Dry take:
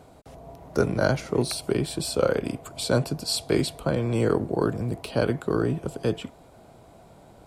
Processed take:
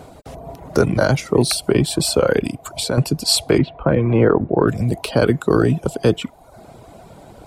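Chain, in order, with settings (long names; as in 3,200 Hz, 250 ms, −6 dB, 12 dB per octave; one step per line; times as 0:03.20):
reverb reduction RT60 0.72 s
0:02.46–0:02.98: downward compressor 2.5 to 1, threshold −34 dBFS, peak gain reduction 11.5 dB
0:03.58–0:04.68: low-pass filter 2,400 Hz 24 dB per octave
boost into a limiter +13.5 dB
level −2.5 dB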